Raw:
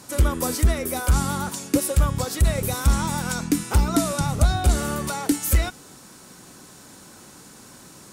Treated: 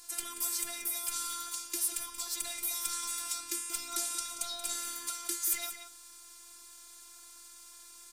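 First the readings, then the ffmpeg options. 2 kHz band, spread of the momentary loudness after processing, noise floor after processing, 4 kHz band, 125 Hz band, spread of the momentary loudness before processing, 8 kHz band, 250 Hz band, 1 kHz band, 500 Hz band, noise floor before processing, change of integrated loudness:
-13.5 dB, 18 LU, -53 dBFS, -5.5 dB, under -40 dB, 5 LU, -3.5 dB, -28.0 dB, -16.0 dB, -24.0 dB, -47 dBFS, -10.5 dB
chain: -filter_complex "[0:a]lowpass=f=3400:p=1,aderivative,acrossover=split=240|1600[s0][s1][s2];[s1]alimiter=level_in=15:limit=0.0631:level=0:latency=1:release=35,volume=0.0668[s3];[s0][s3][s2]amix=inputs=3:normalize=0,aeval=exprs='val(0)+0.000178*(sin(2*PI*50*n/s)+sin(2*PI*2*50*n/s)/2+sin(2*PI*3*50*n/s)/3+sin(2*PI*4*50*n/s)/4+sin(2*PI*5*50*n/s)/5)':c=same,asplit=2[s4][s5];[s5]asoftclip=type=tanh:threshold=0.0422,volume=0.668[s6];[s4][s6]amix=inputs=2:normalize=0,afftfilt=real='hypot(re,im)*cos(PI*b)':imag='0':win_size=512:overlap=0.75,asplit=2[s7][s8];[s8]adelay=180.8,volume=0.398,highshelf=f=4000:g=-4.07[s9];[s7][s9]amix=inputs=2:normalize=0,volume=1.33"

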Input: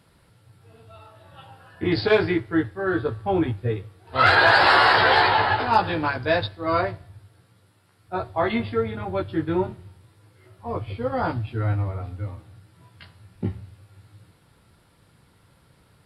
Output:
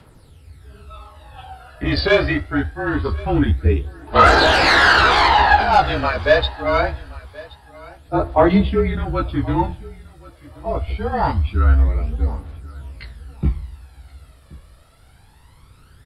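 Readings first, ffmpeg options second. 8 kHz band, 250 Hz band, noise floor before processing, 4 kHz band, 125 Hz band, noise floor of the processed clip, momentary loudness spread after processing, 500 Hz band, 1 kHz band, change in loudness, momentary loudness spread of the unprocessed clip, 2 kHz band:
no reading, +5.0 dB, -60 dBFS, +5.0 dB, +7.5 dB, -49 dBFS, 20 LU, +4.5 dB, +4.5 dB, +5.0 dB, 17 LU, +3.5 dB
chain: -af "afreqshift=-35,aeval=exprs='0.596*(cos(1*acos(clip(val(0)/0.596,-1,1)))-cos(1*PI/2))+0.0668*(cos(5*acos(clip(val(0)/0.596,-1,1)))-cos(5*PI/2))':c=same,aphaser=in_gain=1:out_gain=1:delay=1.8:decay=0.58:speed=0.24:type=triangular,aecho=1:1:1077|2154:0.0794|0.0143,volume=1.12"

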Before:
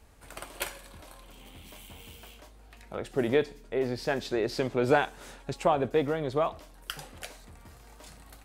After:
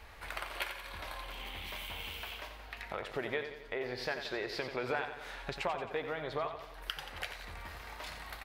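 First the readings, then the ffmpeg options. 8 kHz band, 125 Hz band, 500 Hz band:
-8.0 dB, -10.5 dB, -10.5 dB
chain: -filter_complex "[0:a]equalizer=f=125:t=o:w=1:g=-5,equalizer=f=250:t=o:w=1:g=-7,equalizer=f=1000:t=o:w=1:g=4,equalizer=f=2000:t=o:w=1:g=8,equalizer=f=4000:t=o:w=1:g=5,equalizer=f=8000:t=o:w=1:g=-9,acompressor=threshold=0.00708:ratio=3,asplit=2[s0][s1];[s1]aecho=0:1:89|178|267|356|445|534:0.355|0.195|0.107|0.059|0.0325|0.0179[s2];[s0][s2]amix=inputs=2:normalize=0,volume=1.58"

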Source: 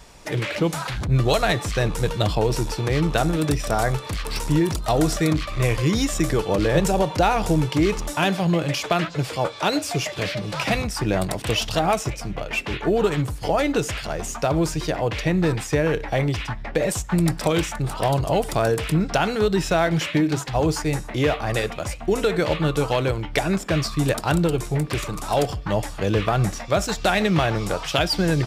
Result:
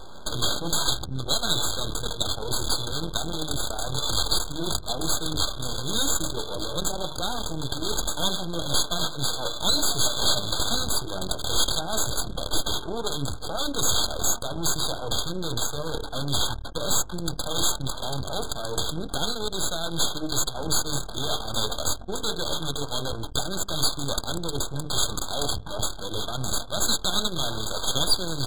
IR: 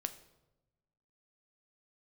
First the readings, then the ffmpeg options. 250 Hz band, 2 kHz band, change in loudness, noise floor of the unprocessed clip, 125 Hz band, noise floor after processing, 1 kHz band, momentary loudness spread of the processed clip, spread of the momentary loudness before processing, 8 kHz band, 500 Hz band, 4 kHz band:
-11.0 dB, -10.0 dB, -4.0 dB, -35 dBFS, -11.0 dB, -35 dBFS, -7.5 dB, 7 LU, 6 LU, +6.0 dB, -10.5 dB, +4.5 dB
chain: -filter_complex "[0:a]areverse,acompressor=threshold=0.0447:ratio=12,areverse,bandreject=f=50:t=h:w=6,bandreject=f=100:t=h:w=6,bandreject=f=150:t=h:w=6,bandreject=f=200:t=h:w=6,bandreject=f=250:t=h:w=6,bandreject=f=300:t=h:w=6,bandreject=f=350:t=h:w=6,bandreject=f=400:t=h:w=6,bandreject=f=450:t=h:w=6,asplit=2[s0][s1];[1:a]atrim=start_sample=2205,atrim=end_sample=4410[s2];[s1][s2]afir=irnorm=-1:irlink=0,volume=0.631[s3];[s0][s3]amix=inputs=2:normalize=0,aexciter=amount=4.9:drive=8.4:freq=2100,apsyclip=2.37,aeval=exprs='val(0)+0.00631*(sin(2*PI*50*n/s)+sin(2*PI*2*50*n/s)/2+sin(2*PI*3*50*n/s)/3+sin(2*PI*4*50*n/s)/4+sin(2*PI*5*50*n/s)/5)':c=same,aresample=22050,aresample=44100,aeval=exprs='max(val(0),0)':c=same,adynamicequalizer=threshold=0.00794:dfrequency=190:dqfactor=4.1:tfrequency=190:tqfactor=4.1:attack=5:release=100:ratio=0.375:range=3.5:mode=cutabove:tftype=bell,adynamicsmooth=sensitivity=2.5:basefreq=750,afftfilt=real='re*eq(mod(floor(b*sr/1024/1600),2),0)':imag='im*eq(mod(floor(b*sr/1024/1600),2),0)':win_size=1024:overlap=0.75,volume=0.473"

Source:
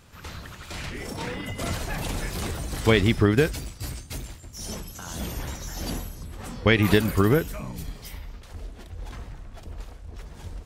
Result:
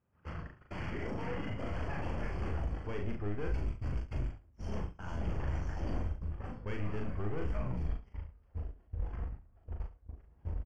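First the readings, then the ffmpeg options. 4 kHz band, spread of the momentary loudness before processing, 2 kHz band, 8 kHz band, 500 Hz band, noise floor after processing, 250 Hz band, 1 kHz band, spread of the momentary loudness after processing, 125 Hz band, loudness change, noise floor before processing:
-23.0 dB, 21 LU, -17.0 dB, under -25 dB, -15.5 dB, -65 dBFS, -15.0 dB, -11.0 dB, 9 LU, -9.5 dB, -14.0 dB, -45 dBFS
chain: -filter_complex "[0:a]aeval=exprs='if(lt(val(0),0),0.708*val(0),val(0))':c=same,highpass=56,highshelf=f=10000:g=-9,agate=range=0.0501:threshold=0.0112:ratio=16:detection=peak,areverse,acompressor=threshold=0.02:ratio=8,areverse,aeval=exprs='(tanh(89.1*val(0)+0.25)-tanh(0.25))/89.1':c=same,adynamicsmooth=sensitivity=5:basefreq=1600,asplit=2[s0][s1];[s1]adelay=39,volume=0.668[s2];[s0][s2]amix=inputs=2:normalize=0,asplit=2[s3][s4];[s4]aecho=0:1:70:0.2[s5];[s3][s5]amix=inputs=2:normalize=0,asubboost=boost=2.5:cutoff=91,asuperstop=centerf=3800:order=8:qfactor=3.6,volume=1.58"

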